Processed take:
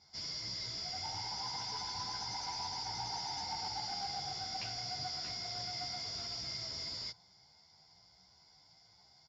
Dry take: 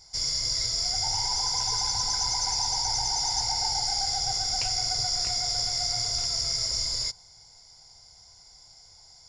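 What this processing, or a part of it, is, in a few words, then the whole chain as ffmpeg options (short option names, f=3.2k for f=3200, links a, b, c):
barber-pole flanger into a guitar amplifier: -filter_complex "[0:a]asplit=2[a][b];[b]adelay=11.9,afreqshift=1.2[c];[a][c]amix=inputs=2:normalize=1,asoftclip=type=tanh:threshold=-26.5dB,highpass=100,equalizer=f=190:t=q:w=4:g=8,equalizer=f=310:t=q:w=4:g=4,equalizer=f=500:t=q:w=4:g=-4,lowpass=f=4.5k:w=0.5412,lowpass=f=4.5k:w=1.3066,volume=-2.5dB"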